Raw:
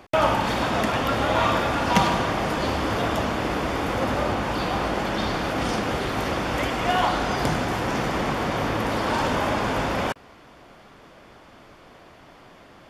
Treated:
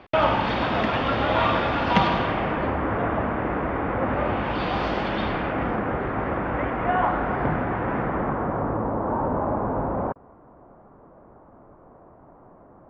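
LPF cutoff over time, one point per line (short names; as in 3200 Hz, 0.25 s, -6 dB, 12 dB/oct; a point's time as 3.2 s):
LPF 24 dB/oct
2.16 s 3900 Hz
2.75 s 2000 Hz
4.02 s 2000 Hz
4.88 s 4800 Hz
5.75 s 1900 Hz
7.93 s 1900 Hz
8.94 s 1100 Hz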